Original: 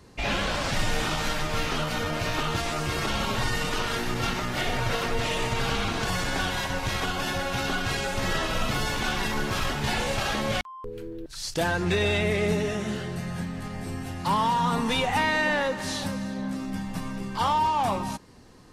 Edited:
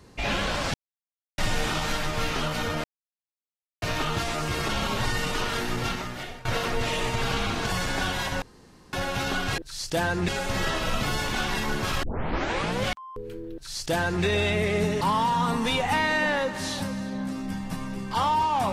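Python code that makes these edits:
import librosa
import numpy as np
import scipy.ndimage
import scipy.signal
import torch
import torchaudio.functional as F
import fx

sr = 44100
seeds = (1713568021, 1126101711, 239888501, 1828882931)

y = fx.edit(x, sr, fx.insert_silence(at_s=0.74, length_s=0.64),
    fx.insert_silence(at_s=2.2, length_s=0.98),
    fx.fade_out_to(start_s=4.16, length_s=0.67, floor_db=-22.0),
    fx.room_tone_fill(start_s=6.8, length_s=0.51),
    fx.tape_start(start_s=9.71, length_s=0.83),
    fx.duplicate(start_s=11.22, length_s=0.7, to_s=7.96),
    fx.cut(start_s=12.69, length_s=1.56), tone=tone)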